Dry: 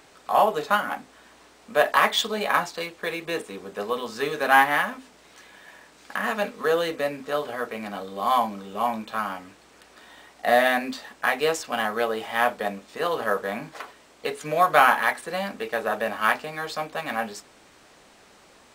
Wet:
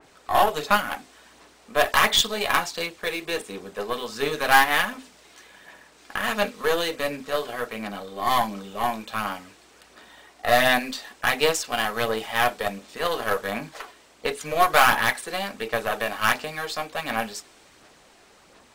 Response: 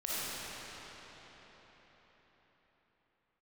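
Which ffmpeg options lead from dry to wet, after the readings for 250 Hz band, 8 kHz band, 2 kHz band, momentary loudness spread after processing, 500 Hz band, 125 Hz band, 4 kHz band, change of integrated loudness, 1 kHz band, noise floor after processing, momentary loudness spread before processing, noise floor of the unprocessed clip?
0.0 dB, +6.5 dB, +1.0 dB, 14 LU, -1.0 dB, +3.0 dB, +5.0 dB, +0.5 dB, -0.5 dB, -55 dBFS, 14 LU, -54 dBFS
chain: -af "aeval=exprs='0.668*(cos(1*acos(clip(val(0)/0.668,-1,1)))-cos(1*PI/2))+0.0422*(cos(8*acos(clip(val(0)/0.668,-1,1)))-cos(8*PI/2))':c=same,aphaser=in_gain=1:out_gain=1:delay=2.9:decay=0.3:speed=1.4:type=sinusoidal,adynamicequalizer=threshold=0.02:dfrequency=2300:dqfactor=0.7:tfrequency=2300:tqfactor=0.7:attack=5:release=100:ratio=0.375:range=3.5:mode=boostabove:tftype=highshelf,volume=0.841"

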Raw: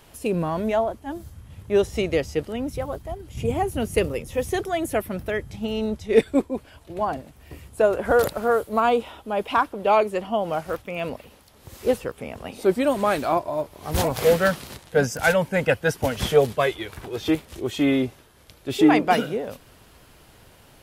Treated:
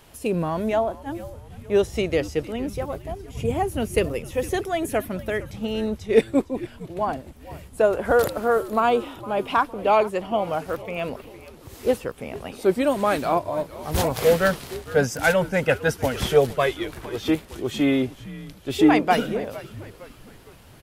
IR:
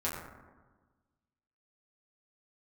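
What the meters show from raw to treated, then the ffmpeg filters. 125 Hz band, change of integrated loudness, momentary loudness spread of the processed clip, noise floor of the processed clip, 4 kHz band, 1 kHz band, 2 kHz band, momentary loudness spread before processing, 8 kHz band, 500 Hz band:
+0.5 dB, 0.0 dB, 15 LU, -47 dBFS, 0.0 dB, 0.0 dB, 0.0 dB, 13 LU, 0.0 dB, 0.0 dB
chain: -filter_complex "[0:a]asplit=5[s0][s1][s2][s3][s4];[s1]adelay=458,afreqshift=-100,volume=0.141[s5];[s2]adelay=916,afreqshift=-200,volume=0.0653[s6];[s3]adelay=1374,afreqshift=-300,volume=0.0299[s7];[s4]adelay=1832,afreqshift=-400,volume=0.0138[s8];[s0][s5][s6][s7][s8]amix=inputs=5:normalize=0"

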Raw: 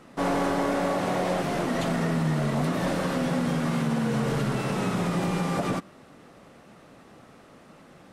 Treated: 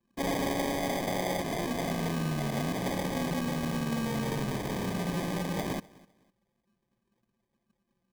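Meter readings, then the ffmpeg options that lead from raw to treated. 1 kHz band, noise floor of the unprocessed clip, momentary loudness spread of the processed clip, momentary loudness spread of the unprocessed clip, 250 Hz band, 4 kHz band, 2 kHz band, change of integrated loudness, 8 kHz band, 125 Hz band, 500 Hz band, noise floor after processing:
-5.5 dB, -52 dBFS, 2 LU, 2 LU, -5.5 dB, -1.5 dB, -4.5 dB, -5.0 dB, -0.5 dB, -6.0 dB, -5.5 dB, -80 dBFS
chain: -af "highpass=f=110:p=1,anlmdn=2.51,acrusher=samples=32:mix=1:aa=0.000001,aecho=1:1:253|506:0.0708|0.0177,volume=0.596"

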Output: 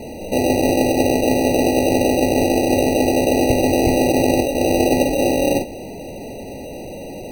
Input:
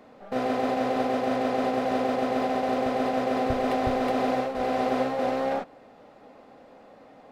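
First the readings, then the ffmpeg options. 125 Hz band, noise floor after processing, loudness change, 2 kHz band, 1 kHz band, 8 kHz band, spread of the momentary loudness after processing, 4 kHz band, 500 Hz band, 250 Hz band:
+15.0 dB, -32 dBFS, +9.5 dB, +8.5 dB, +3.5 dB, no reading, 16 LU, +12.5 dB, +9.5 dB, +11.5 dB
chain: -af "aeval=exprs='val(0)+0.5*0.0141*sgn(val(0))':c=same,acrusher=samples=40:mix=1:aa=0.000001,afftfilt=real='re*eq(mod(floor(b*sr/1024/960),2),0)':imag='im*eq(mod(floor(b*sr/1024/960),2),0)':win_size=1024:overlap=0.75,volume=2.82"

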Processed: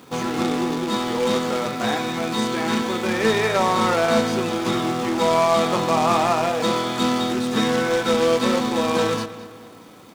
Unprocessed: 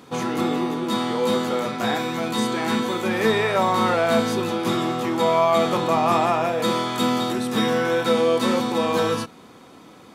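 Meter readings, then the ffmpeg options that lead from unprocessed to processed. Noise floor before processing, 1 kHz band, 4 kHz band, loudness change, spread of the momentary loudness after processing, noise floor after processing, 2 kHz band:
-47 dBFS, +0.5 dB, +1.5 dB, +0.5 dB, 5 LU, -43 dBFS, +1.0 dB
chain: -filter_complex "[0:a]acrusher=bits=2:mode=log:mix=0:aa=0.000001,acrossover=split=8500[s0][s1];[s1]acompressor=threshold=0.00398:ratio=4:attack=1:release=60[s2];[s0][s2]amix=inputs=2:normalize=0,asplit=2[s3][s4];[s4]adelay=212,lowpass=f=4900:p=1,volume=0.188,asplit=2[s5][s6];[s6]adelay=212,lowpass=f=4900:p=1,volume=0.47,asplit=2[s7][s8];[s8]adelay=212,lowpass=f=4900:p=1,volume=0.47,asplit=2[s9][s10];[s10]adelay=212,lowpass=f=4900:p=1,volume=0.47[s11];[s3][s5][s7][s9][s11]amix=inputs=5:normalize=0"

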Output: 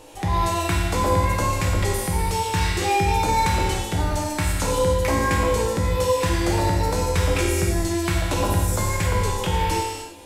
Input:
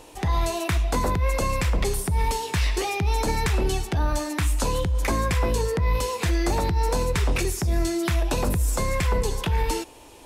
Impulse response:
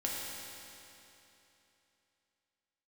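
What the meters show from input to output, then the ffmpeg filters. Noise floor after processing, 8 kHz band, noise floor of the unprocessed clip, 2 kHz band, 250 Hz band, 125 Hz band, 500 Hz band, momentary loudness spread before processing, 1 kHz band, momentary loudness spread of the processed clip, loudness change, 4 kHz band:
-32 dBFS, +3.5 dB, -47 dBFS, +3.5 dB, +3.0 dB, +2.5 dB, +4.0 dB, 2 LU, +6.0 dB, 4 LU, +3.0 dB, +3.5 dB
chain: -filter_complex "[1:a]atrim=start_sample=2205,afade=t=out:st=0.37:d=0.01,atrim=end_sample=16758[s0];[0:a][s0]afir=irnorm=-1:irlink=0"

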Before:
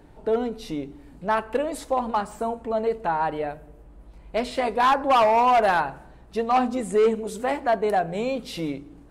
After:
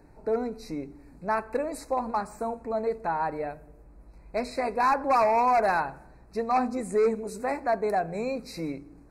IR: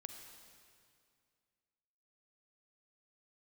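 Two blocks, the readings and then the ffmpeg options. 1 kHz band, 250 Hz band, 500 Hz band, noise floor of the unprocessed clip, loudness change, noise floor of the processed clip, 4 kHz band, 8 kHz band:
-4.0 dB, -4.0 dB, -4.0 dB, -49 dBFS, -4.0 dB, -53 dBFS, -10.5 dB, -4.0 dB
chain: -af "asuperstop=centerf=3200:order=20:qfactor=2.6,volume=0.631"

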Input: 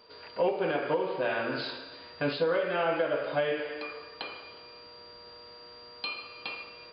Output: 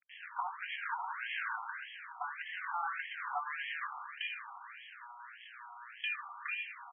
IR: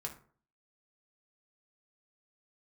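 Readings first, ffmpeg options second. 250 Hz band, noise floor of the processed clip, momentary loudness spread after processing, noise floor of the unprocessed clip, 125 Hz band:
under -40 dB, -53 dBFS, 13 LU, -50 dBFS, under -40 dB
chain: -af "highpass=f=340:w=0.5412,highpass=f=340:w=1.3066,acrusher=bits=7:mix=0:aa=0.000001,acompressor=threshold=0.0224:ratio=12,aeval=exprs='max(val(0),0)':c=same,aecho=1:1:249|250:0.119|0.15,acrusher=bits=4:mode=log:mix=0:aa=0.000001,afftfilt=real='re*between(b*sr/1024,990*pow(2400/990,0.5+0.5*sin(2*PI*1.7*pts/sr))/1.41,990*pow(2400/990,0.5+0.5*sin(2*PI*1.7*pts/sr))*1.41)':imag='im*between(b*sr/1024,990*pow(2400/990,0.5+0.5*sin(2*PI*1.7*pts/sr))/1.41,990*pow(2400/990,0.5+0.5*sin(2*PI*1.7*pts/sr))*1.41)':win_size=1024:overlap=0.75,volume=3.16"

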